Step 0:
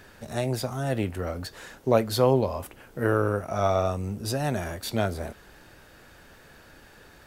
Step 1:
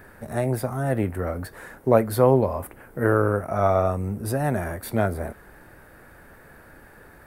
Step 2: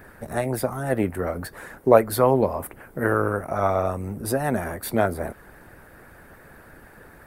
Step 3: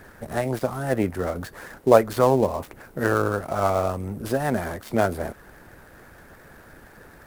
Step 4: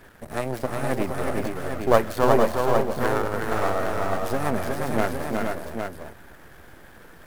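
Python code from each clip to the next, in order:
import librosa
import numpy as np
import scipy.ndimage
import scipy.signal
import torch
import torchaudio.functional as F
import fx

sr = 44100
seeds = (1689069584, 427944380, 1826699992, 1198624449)

y1 = fx.band_shelf(x, sr, hz=4400.0, db=-13.0, octaves=1.7)
y1 = y1 * librosa.db_to_amplitude(3.5)
y2 = fx.hpss(y1, sr, part='percussive', gain_db=9)
y2 = y2 * librosa.db_to_amplitude(-4.5)
y3 = fx.dead_time(y2, sr, dead_ms=0.066)
y4 = np.where(y3 < 0.0, 10.0 ** (-12.0 / 20.0) * y3, y3)
y4 = fx.echo_multitap(y4, sr, ms=(365, 457, 470, 808), db=(-4.0, -11.5, -6.0, -6.5))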